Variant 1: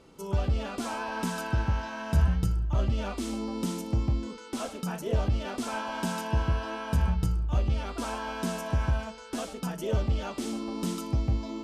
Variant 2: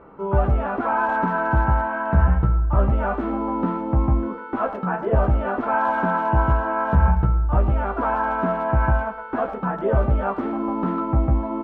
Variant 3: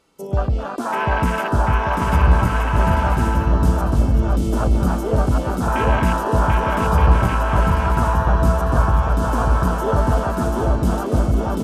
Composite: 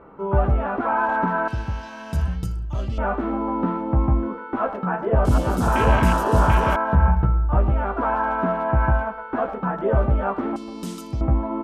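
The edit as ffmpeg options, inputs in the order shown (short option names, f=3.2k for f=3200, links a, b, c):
-filter_complex "[0:a]asplit=2[a][b];[1:a]asplit=4[c][d][e][f];[c]atrim=end=1.482[g];[a]atrim=start=1.478:end=2.982[h];[d]atrim=start=2.978:end=5.252[i];[2:a]atrim=start=5.248:end=6.762[j];[e]atrim=start=6.758:end=10.562[k];[b]atrim=start=10.558:end=11.212[l];[f]atrim=start=11.208[m];[g][h]acrossfade=d=0.004:c1=hsin:c2=hsin[n];[n][i]acrossfade=d=0.004:c1=hsin:c2=hsin[o];[o][j]acrossfade=d=0.004:c1=hsin:c2=hsin[p];[p][k]acrossfade=d=0.004:c1=hsin:c2=hsin[q];[q][l]acrossfade=d=0.004:c1=hsin:c2=hsin[r];[r][m]acrossfade=d=0.004:c1=hsin:c2=hsin"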